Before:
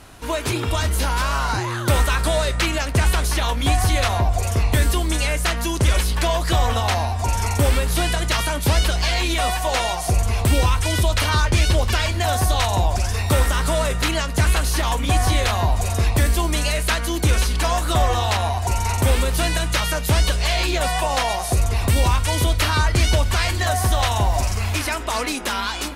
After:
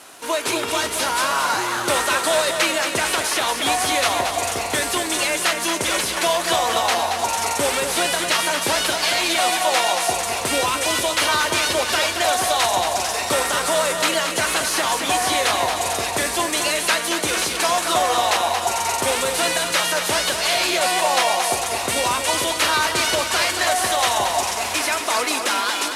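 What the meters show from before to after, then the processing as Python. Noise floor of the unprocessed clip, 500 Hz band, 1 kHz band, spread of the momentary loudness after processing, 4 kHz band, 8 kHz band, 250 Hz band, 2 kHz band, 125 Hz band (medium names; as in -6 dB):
-26 dBFS, +2.5 dB, +3.5 dB, 3 LU, +4.0 dB, +5.5 dB, -2.5 dB, +3.5 dB, -20.0 dB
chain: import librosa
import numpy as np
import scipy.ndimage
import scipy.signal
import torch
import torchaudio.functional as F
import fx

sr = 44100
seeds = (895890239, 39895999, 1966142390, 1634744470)

y = fx.cvsd(x, sr, bps=64000)
y = scipy.signal.sosfilt(scipy.signal.butter(2, 370.0, 'highpass', fs=sr, output='sos'), y)
y = fx.high_shelf(y, sr, hz=6600.0, db=6.0)
y = fx.echo_feedback(y, sr, ms=227, feedback_pct=58, wet_db=-7.0)
y = y * 10.0 ** (2.5 / 20.0)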